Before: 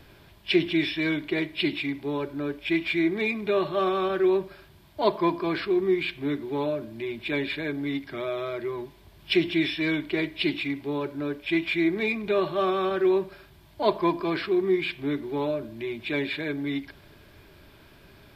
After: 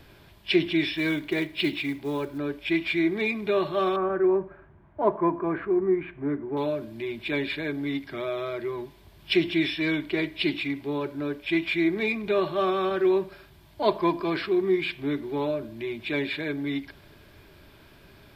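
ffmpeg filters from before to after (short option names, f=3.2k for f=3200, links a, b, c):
-filter_complex "[0:a]asettb=1/sr,asplit=3[a][b][c];[a]atrim=end=0.934[d];[b]atrim=start=0.93:end=2.38,asetpts=PTS-STARTPTS,afade=t=in:d=0.004:c=qsin,afade=t=out:st=1.446:d=0.004:c=qsin,acrusher=bits=7:mode=log:mix=0:aa=0.000001[e];[c]atrim=start=2.376[f];[d][e]acrossfade=d=0.004:c1=hsin:c2=qsin[g];[g][f]acrossfade=d=0.004:c1=qsin:c2=hsin,asettb=1/sr,asplit=3[h][i][j];[h]atrim=end=3.964[k];[i]atrim=start=3.96:end=6.57,asetpts=PTS-STARTPTS,afade=t=in:d=0.004:c=qsin,afade=t=out:st=2.606:d=0.004:c=qsin,lowpass=f=1.7k:w=0.5412,lowpass=f=1.7k:w=1.3066[l];[j]atrim=start=6.566[m];[k][l]acrossfade=d=0.004:c1=hsin:c2=qsin[n];[n][m]acrossfade=d=0.004:c1=qsin:c2=hsin"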